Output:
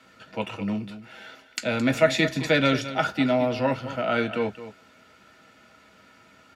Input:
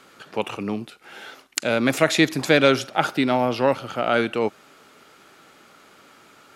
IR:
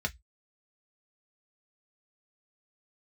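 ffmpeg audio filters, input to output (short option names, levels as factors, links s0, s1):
-filter_complex "[0:a]aecho=1:1:217:0.224[s0];[1:a]atrim=start_sample=2205[s1];[s0][s1]afir=irnorm=-1:irlink=0,volume=0.376"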